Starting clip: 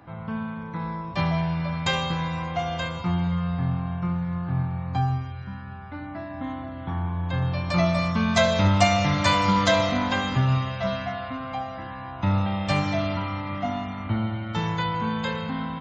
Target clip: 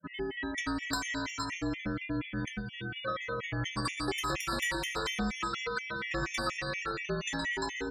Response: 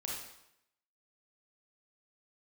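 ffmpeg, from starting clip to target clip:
-filter_complex "[0:a]aeval=exprs='(tanh(8.91*val(0)+0.65)-tanh(0.65))/8.91':c=same,bandreject=f=50:t=h:w=6,bandreject=f=100:t=h:w=6,bandreject=f=150:t=h:w=6,bandreject=f=200:t=h:w=6,bandreject=f=250:t=h:w=6,bandreject=f=300:t=h:w=6,afreqshift=-26,adynamicequalizer=threshold=0.00501:dfrequency=3300:dqfactor=3:tfrequency=3300:tqfactor=3:attack=5:release=100:ratio=0.375:range=2:mode=cutabove:tftype=bell,acrossover=split=210[s0][s1];[s1]dynaudnorm=f=450:g=5:m=2[s2];[s0][s2]amix=inputs=2:normalize=0,bass=f=250:g=0,treble=f=4000:g=-3,asetrate=88200,aresample=44100,afftfilt=real='re*gte(hypot(re,im),0.00631)':imag='im*gte(hypot(re,im),0.00631)':win_size=1024:overlap=0.75,afftdn=nr=18:nf=-42,acompressor=threshold=0.0251:ratio=5,afftfilt=real='re*gt(sin(2*PI*4.2*pts/sr)*(1-2*mod(floor(b*sr/1024/1800),2)),0)':imag='im*gt(sin(2*PI*4.2*pts/sr)*(1-2*mod(floor(b*sr/1024/1800),2)),0)':win_size=1024:overlap=0.75,volume=1.5"

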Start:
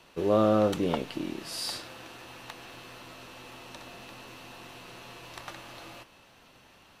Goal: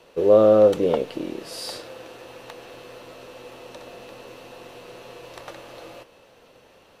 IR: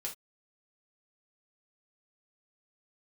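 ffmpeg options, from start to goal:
-af "equalizer=f=490:t=o:w=0.73:g=13.5"

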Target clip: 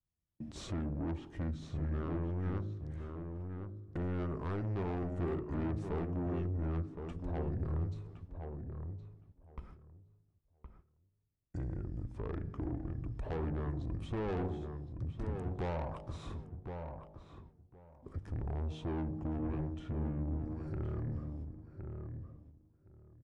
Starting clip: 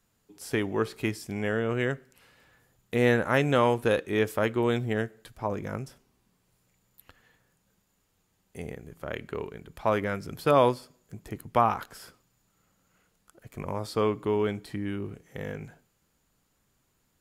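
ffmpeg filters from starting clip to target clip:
-filter_complex "[0:a]highpass=49,aemphasis=mode=reproduction:type=bsi,bandreject=f=70.1:t=h:w=4,bandreject=f=140.2:t=h:w=4,bandreject=f=210.3:t=h:w=4,bandreject=f=280.4:t=h:w=4,bandreject=f=350.5:t=h:w=4,bandreject=f=420.6:t=h:w=4,bandreject=f=490.7:t=h:w=4,bandreject=f=560.8:t=h:w=4,bandreject=f=630.9:t=h:w=4,bandreject=f=701:t=h:w=4,bandreject=f=771.1:t=h:w=4,bandreject=f=841.2:t=h:w=4,bandreject=f=911.3:t=h:w=4,bandreject=f=981.4:t=h:w=4,bandreject=f=1051.5:t=h:w=4,bandreject=f=1121.6:t=h:w=4,bandreject=f=1191.7:t=h:w=4,agate=range=0.0282:threshold=0.00178:ratio=16:detection=peak,tiltshelf=f=900:g=3.5,acompressor=threshold=0.00708:ratio=2,asoftclip=type=tanh:threshold=0.0133,asplit=2[s0][s1];[s1]adelay=790,lowpass=f=2200:p=1,volume=0.501,asplit=2[s2][s3];[s3]adelay=790,lowpass=f=2200:p=1,volume=0.17,asplit=2[s4][s5];[s5]adelay=790,lowpass=f=2200:p=1,volume=0.17[s6];[s0][s2][s4][s6]amix=inputs=4:normalize=0,asetrate=32667,aresample=44100,volume=1.68"

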